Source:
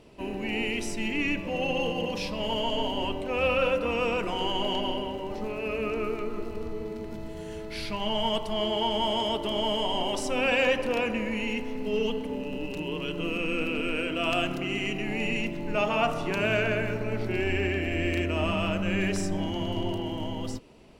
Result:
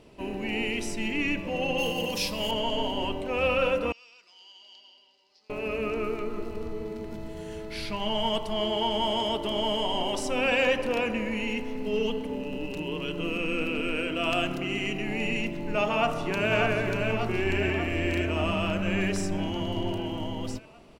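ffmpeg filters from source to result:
ffmpeg -i in.wav -filter_complex "[0:a]asettb=1/sr,asplit=3[link_01][link_02][link_03];[link_01]atrim=end=1.784[link_04];[link_02]atrim=start=1.78:end=2.51,asetpts=PTS-STARTPTS,afade=type=in:duration=0.004:curve=qsin,afade=type=out:start_time=0.726:duration=0.004:curve=qsin,aemphasis=mode=production:type=75fm[link_05];[link_03]atrim=start=2.506[link_06];[link_04][link_05]acrossfade=duration=0.004:curve1=hsin:curve2=qsin[link_07];[link_07][link_06]acrossfade=duration=0.004:curve1=qsin:curve2=hsin,asettb=1/sr,asplit=3[link_08][link_09][link_10];[link_08]atrim=end=3.924[link_11];[link_09]atrim=start=3.92:end=5.5,asetpts=PTS-STARTPTS,afade=type=in:duration=0.004:curve=qsin,afade=type=out:start_time=1.576:duration=0.004:curve=qsin,bandpass=frequency=4800:width_type=q:width=8[link_12];[link_10]atrim=start=5.496[link_13];[link_11][link_12]acrossfade=duration=0.004:curve1=hsin:curve2=qsin[link_14];[link_14][link_13]acrossfade=duration=0.004:curve1=qsin:curve2=hsin,asplit=2[link_15][link_16];[link_16]afade=type=in:start_time=15.92:duration=0.01,afade=type=out:start_time=16.52:duration=0.01,aecho=0:1:590|1180|1770|2360|2950|3540|4130|4720|5310|5900:0.630957|0.410122|0.266579|0.173277|0.11263|0.0732094|0.0475861|0.030931|0.0201051|0.0130683[link_17];[link_15][link_17]amix=inputs=2:normalize=0" out.wav

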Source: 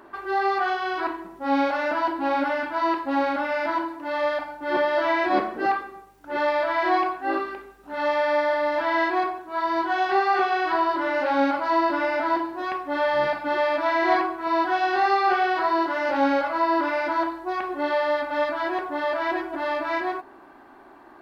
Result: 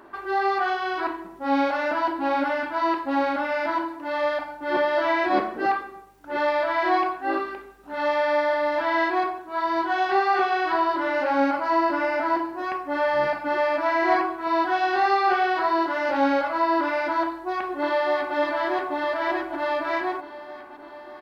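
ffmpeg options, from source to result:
ffmpeg -i in.wav -filter_complex "[0:a]asettb=1/sr,asplit=3[link_01][link_02][link_03];[link_01]atrim=end=11.244[link_04];[link_02]atrim=start=11.24:end=14.27,asetpts=PTS-STARTPTS,afade=type=in:duration=0.004:curve=qsin,afade=type=out:start_time=3.026:duration=0.004:curve=qsin,equalizer=frequency=3600:width_type=o:width=0.32:gain=-7[link_05];[link_03]atrim=start=14.266[link_06];[link_04][link_05]acrossfade=duration=0.004:curve1=hsin:curve2=qsin[link_07];[link_07][link_06]acrossfade=duration=0.004:curve1=qsin:curve2=hsin,asplit=2[link_08][link_09];[link_09]afade=type=in:start_time=17.22:duration=0.01,afade=type=out:start_time=18.36:duration=0.01,aecho=0:1:600|1200|1800|2400|3000|3600|4200|4800|5400|6000|6600:0.421697|0.295188|0.206631|0.144642|0.101249|0.0708745|0.0496122|0.0347285|0.02431|0.017017|0.0119119[link_10];[link_08][link_10]amix=inputs=2:normalize=0" out.wav

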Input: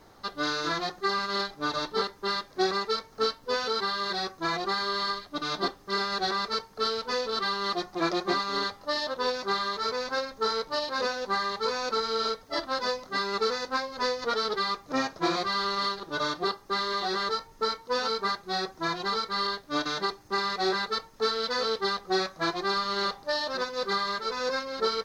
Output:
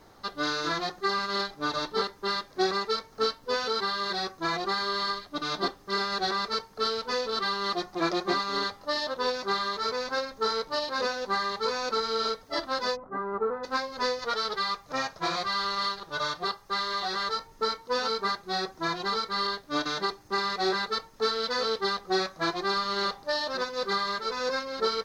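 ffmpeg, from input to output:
ffmpeg -i in.wav -filter_complex "[0:a]asplit=3[link_01][link_02][link_03];[link_01]afade=type=out:start_time=12.95:duration=0.02[link_04];[link_02]lowpass=frequency=1300:width=0.5412,lowpass=frequency=1300:width=1.3066,afade=type=in:start_time=12.95:duration=0.02,afade=type=out:start_time=13.63:duration=0.02[link_05];[link_03]afade=type=in:start_time=13.63:duration=0.02[link_06];[link_04][link_05][link_06]amix=inputs=3:normalize=0,asettb=1/sr,asplit=3[link_07][link_08][link_09];[link_07]atrim=end=14.194[link_10];[link_08]atrim=start=14.19:end=17.36,asetpts=PTS-STARTPTS,afade=type=in:duration=0.004:curve=qsin,afade=type=out:start_time=3.166:duration=0.004:curve=qsin,equalizer=frequency=300:width=1.5:gain=-11[link_11];[link_09]atrim=start=17.356[link_12];[link_10][link_11]acrossfade=duration=0.004:curve1=hsin:curve2=qsin[link_13];[link_13][link_12]acrossfade=duration=0.004:curve1=qsin:curve2=hsin" out.wav

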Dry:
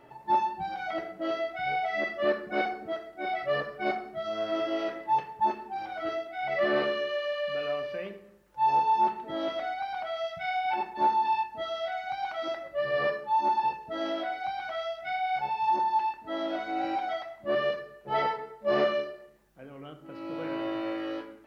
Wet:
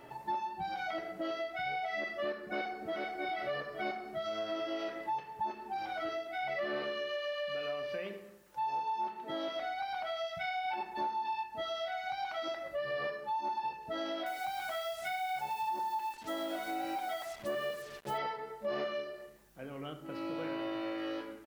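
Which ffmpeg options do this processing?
ffmpeg -i in.wav -filter_complex "[0:a]asplit=2[link_01][link_02];[link_02]afade=type=in:start_time=2.46:duration=0.01,afade=type=out:start_time=3.19:duration=0.01,aecho=0:1:430|860|1290|1720|2150:0.501187|0.225534|0.10149|0.0456707|0.0205518[link_03];[link_01][link_03]amix=inputs=2:normalize=0,asettb=1/sr,asplit=3[link_04][link_05][link_06];[link_04]atrim=end=8.004[link_07];[link_05]atrim=start=8:end=9.57,asetpts=PTS-STARTPTS,afade=type=in:duration=0.004:curve=qsin,afade=type=out:start_time=1.566:duration=0.004:curve=qsin,highpass=frequency=150:poles=1[link_08];[link_06]atrim=start=9.566[link_09];[link_07][link_08]acrossfade=duration=0.004:curve1=hsin:curve2=qsin[link_10];[link_10][link_09]acrossfade=duration=0.004:curve1=qsin:curve2=hsin,asettb=1/sr,asplit=3[link_11][link_12][link_13];[link_11]atrim=end=14.264[link_14];[link_12]atrim=start=14.26:end=18.18,asetpts=PTS-STARTPTS,afade=type=in:duration=0.004:curve=qsin,afade=type=out:start_time=3.916:duration=0.004:curve=qsin,acrusher=bits=7:mix=0:aa=0.5[link_15];[link_13]atrim=start=18.176[link_16];[link_14][link_15]acrossfade=duration=0.004:curve1=hsin:curve2=qsin[link_17];[link_17][link_16]acrossfade=duration=0.004:curve1=qsin:curve2=hsin,highshelf=frequency=3500:gain=7,acompressor=threshold=-37dB:ratio=4,volume=1.5dB" out.wav

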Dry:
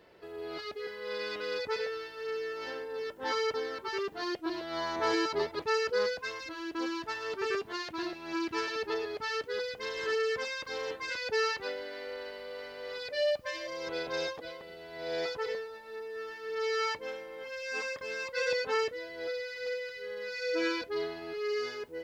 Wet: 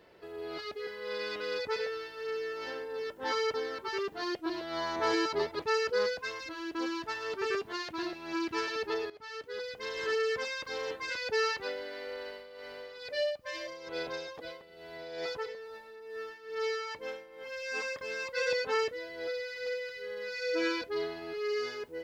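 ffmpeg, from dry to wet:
ffmpeg -i in.wav -filter_complex "[0:a]asettb=1/sr,asplit=3[link_01][link_02][link_03];[link_01]atrim=end=12.294[link_04];[link_02]atrim=start=12.29:end=17.55,asetpts=PTS-STARTPTS,afade=type=in:duration=0.004:curve=qsin,afade=type=out:start_time=5.256:duration=0.004:curve=qsin,tremolo=f=2.3:d=0.63[link_05];[link_03]atrim=start=17.546[link_06];[link_04][link_05]acrossfade=duration=0.004:curve1=hsin:curve2=qsin[link_07];[link_07][link_06]acrossfade=duration=0.004:curve1=qsin:curve2=hsin,asplit=2[link_08][link_09];[link_08]atrim=end=9.1,asetpts=PTS-STARTPTS,afade=type=out:start_time=9.096:duration=0.004:curve=hsin:silence=0.149624[link_10];[link_09]atrim=start=9.1,asetpts=PTS-STARTPTS,afade=type=in:duration=0.9:silence=0.149624[link_11];[link_10][link_11]concat=n=2:v=0:a=1" out.wav

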